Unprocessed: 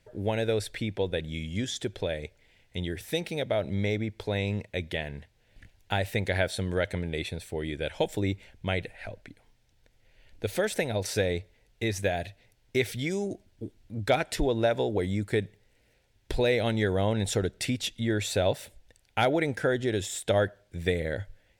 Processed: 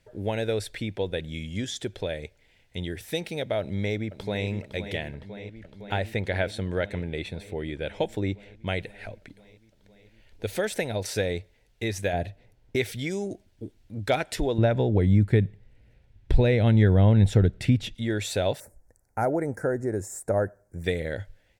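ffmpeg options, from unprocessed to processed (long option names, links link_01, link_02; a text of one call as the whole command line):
ffmpeg -i in.wav -filter_complex "[0:a]asplit=2[link_01][link_02];[link_02]afade=type=in:start_time=3.6:duration=0.01,afade=type=out:start_time=4.47:duration=0.01,aecho=0:1:510|1020|1530|2040|2550|3060|3570|4080|4590|5100|5610|6120:0.298538|0.238831|0.191064|0.152852|0.122281|0.097825|0.07826|0.062608|0.0500864|0.0400691|0.0320553|0.0256442[link_03];[link_01][link_03]amix=inputs=2:normalize=0,asettb=1/sr,asplit=3[link_04][link_05][link_06];[link_04]atrim=end=5.144[link_07];[link_05]atrim=start=5.14:end=8.67,asetpts=PTS-STARTPTS,afade=type=in:duration=0.004:curve=qsin,afade=type=out:start_time=3.526:duration=0.004:curve=qsin,aemphasis=mode=reproduction:type=cd[link_08];[link_06]atrim=start=8.666[link_09];[link_07][link_08]acrossfade=duration=0.004:curve1=hsin:curve2=qsin[link_10];[link_10][link_09]acrossfade=duration=0.004:curve1=qsin:curve2=hsin,asettb=1/sr,asplit=3[link_11][link_12][link_13];[link_11]atrim=end=12.134[link_14];[link_12]atrim=start=12.13:end=12.76,asetpts=PTS-STARTPTS,afade=type=in:duration=0.004:curve=qsin,afade=type=out:start_time=0.626:duration=0.004:curve=qsin,tiltshelf=frequency=1400:gain=6.5[link_15];[link_13]atrim=start=12.756[link_16];[link_14][link_15]acrossfade=duration=0.004:curve1=hsin:curve2=qsin[link_17];[link_17][link_16]acrossfade=duration=0.004:curve1=qsin:curve2=hsin,asettb=1/sr,asplit=3[link_18][link_19][link_20];[link_18]atrim=end=14.584[link_21];[link_19]atrim=start=14.58:end=17.95,asetpts=PTS-STARTPTS,afade=type=in:duration=0.004:curve=qsin,afade=type=out:start_time=3.366:duration=0.004:curve=qsin,bass=frequency=250:gain=13,treble=frequency=4000:gain=-10[link_22];[link_20]atrim=start=17.946[link_23];[link_21][link_22]acrossfade=duration=0.004:curve1=hsin:curve2=qsin[link_24];[link_24][link_23]acrossfade=duration=0.004:curve1=qsin:curve2=hsin,asettb=1/sr,asplit=3[link_25][link_26][link_27];[link_25]atrim=end=18.604[link_28];[link_26]atrim=start=18.6:end=20.84,asetpts=PTS-STARTPTS,afade=type=in:duration=0.004:curve=qsin,afade=type=out:start_time=2.236:duration=0.004:curve=qsin,asuperstop=centerf=3200:order=4:qfactor=0.57[link_29];[link_27]atrim=start=20.836[link_30];[link_28][link_29]acrossfade=duration=0.004:curve1=hsin:curve2=qsin[link_31];[link_31][link_30]acrossfade=duration=0.004:curve1=qsin:curve2=hsin" out.wav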